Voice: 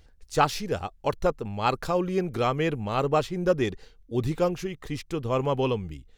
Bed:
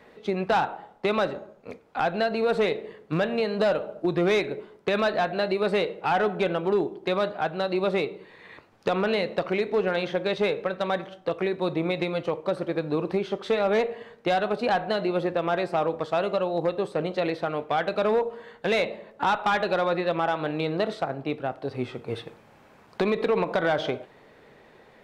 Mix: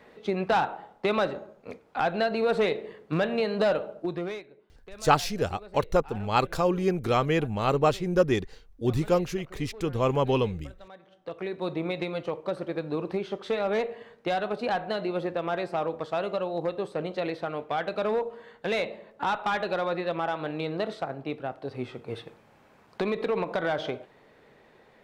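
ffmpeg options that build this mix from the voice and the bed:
ffmpeg -i stem1.wav -i stem2.wav -filter_complex "[0:a]adelay=4700,volume=1dB[link_01];[1:a]volume=17dB,afade=type=out:start_time=3.77:duration=0.67:silence=0.0891251,afade=type=in:start_time=11:duration=0.69:silence=0.125893[link_02];[link_01][link_02]amix=inputs=2:normalize=0" out.wav

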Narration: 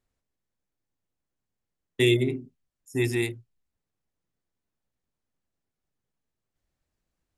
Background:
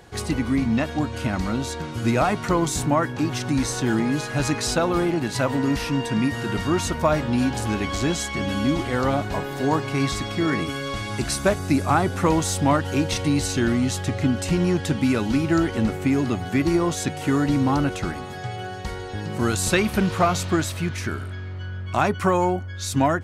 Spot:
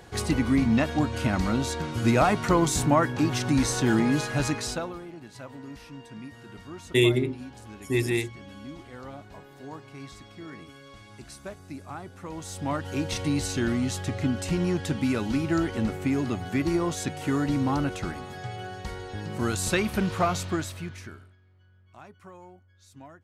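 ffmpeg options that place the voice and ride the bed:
ffmpeg -i stem1.wav -i stem2.wav -filter_complex "[0:a]adelay=4950,volume=0.5dB[link_01];[1:a]volume=14dB,afade=type=out:start_time=4.19:duration=0.8:silence=0.112202,afade=type=in:start_time=12.29:duration=0.92:silence=0.188365,afade=type=out:start_time=20.33:duration=1.03:silence=0.0749894[link_02];[link_01][link_02]amix=inputs=2:normalize=0" out.wav

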